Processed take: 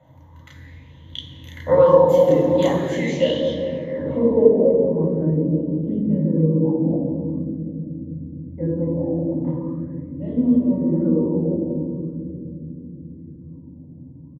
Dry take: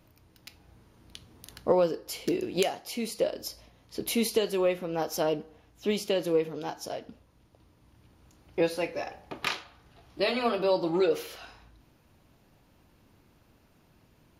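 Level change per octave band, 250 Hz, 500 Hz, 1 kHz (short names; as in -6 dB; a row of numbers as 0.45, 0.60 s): +14.0, +10.5, +6.0 dB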